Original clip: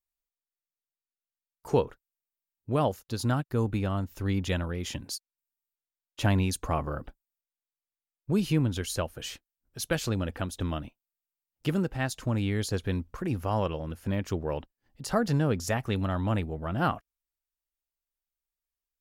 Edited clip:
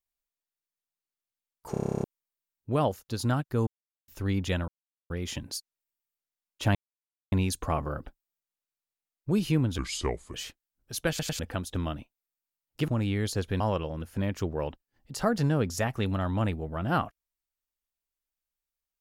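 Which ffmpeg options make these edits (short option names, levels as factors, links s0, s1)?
-filter_complex "[0:a]asplit=23[s0][s1][s2][s3][s4][s5][s6][s7][s8][s9][s10][s11][s12][s13][s14][s15][s16][s17][s18][s19][s20][s21][s22];[s0]atrim=end=1.742[s23];[s1]atrim=start=1.708:end=1.742[s24];[s2]atrim=start=1.708:end=1.742[s25];[s3]atrim=start=1.708:end=1.742[s26];[s4]atrim=start=1.708:end=1.742[s27];[s5]atrim=start=1.708:end=1.742[s28];[s6]atrim=start=1.708:end=1.742[s29];[s7]atrim=start=1.708:end=1.742[s30];[s8]atrim=start=1.708:end=1.742[s31];[s9]atrim=start=1.708:end=1.742[s32];[s10]atrim=start=1.708:end=1.742[s33];[s11]atrim=start=2.038:end=3.67,asetpts=PTS-STARTPTS,afade=t=out:st=1.628:d=0.004:c=hsin[s34];[s12]atrim=start=3.67:end=4.08,asetpts=PTS-STARTPTS,volume=0[s35];[s13]atrim=start=4.08:end=4.68,asetpts=PTS-STARTPTS,afade=t=in:d=0.004:c=hsin,afade=t=out:st=0.596:d=0.004:c=hsin,apad=pad_dur=0.42[s36];[s14]atrim=start=4.68:end=6.33,asetpts=PTS-STARTPTS,afade=t=in:d=0.004:c=hsin,afade=t=out:st=1.646:d=0.004:c=hsin,apad=pad_dur=0.57[s37];[s15]atrim=start=6.33:end=8.794,asetpts=PTS-STARTPTS,afade=t=in:d=0.004:c=hsin[s38];[s16]atrim=start=8.79:end=9.2,asetpts=PTS-STARTPTS,asetrate=32193,aresample=44100,atrim=end_sample=24768,asetpts=PTS-STARTPTS[s39];[s17]atrim=start=9.196:end=10.052[s40];[s18]atrim=start=9.948:end=10.052[s41];[s19]atrim=start=9.948:end=10.052[s42];[s20]atrim=start=10.248:end=11.742[s43];[s21]atrim=start=12.238:end=12.962[s44];[s22]atrim=start=13.498[s45];[s23][s24]acrossfade=d=0.004:c1=hsin:c2=hsin[s46];[s46][s25]acrossfade=d=0.004:c1=hsin:c2=hsin[s47];[s47][s26]acrossfade=d=0.004:c1=hsin:c2=hsin[s48];[s48][s27]acrossfade=d=0.004:c1=hsin:c2=hsin[s49];[s49][s28]acrossfade=d=0.004:c1=hsin:c2=hsin[s50];[s50][s29]acrossfade=d=0.004:c1=hsin:c2=hsin[s51];[s51][s30]acrossfade=d=0.004:c1=hsin:c2=hsin[s52];[s52][s31]acrossfade=d=0.004:c1=hsin:c2=hsin[s53];[s53][s32]acrossfade=d=0.004:c1=hsin:c2=hsin[s54];[s54][s33]acrossfade=d=0.004:c1=hsin:c2=hsin[s55];[s34][s35][s36][s37][s38]concat=n=5:v=0:a=1[s56];[s55][s56]acrossfade=d=0.004:c1=hsin:c2=hsin[s57];[s57][s39]acrossfade=d=0.004:c1=hsin:c2=hsin[s58];[s58][s40]acrossfade=d=0.004:c1=hsin:c2=hsin[s59];[s59][s41]acrossfade=d=0.004:c1=hsin:c2=hsin[s60];[s60][s42]acrossfade=d=0.004:c1=hsin:c2=hsin[s61];[s61][s43]acrossfade=d=0.004:c1=hsin:c2=hsin[s62];[s62][s44]acrossfade=d=0.004:c1=hsin:c2=hsin[s63];[s63][s45]acrossfade=d=0.004:c1=hsin:c2=hsin"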